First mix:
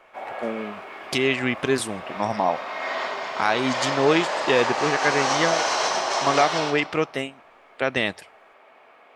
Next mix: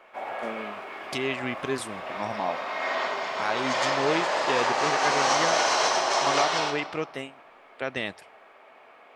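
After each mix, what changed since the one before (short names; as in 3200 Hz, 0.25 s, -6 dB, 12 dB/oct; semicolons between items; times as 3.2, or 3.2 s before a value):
speech -7.5 dB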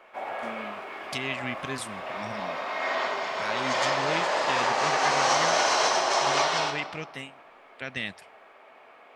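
speech: add band shelf 620 Hz -9.5 dB 2.4 oct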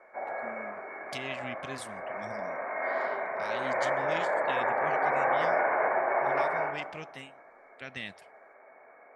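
speech -6.5 dB; background: add rippled Chebyshev low-pass 2300 Hz, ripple 6 dB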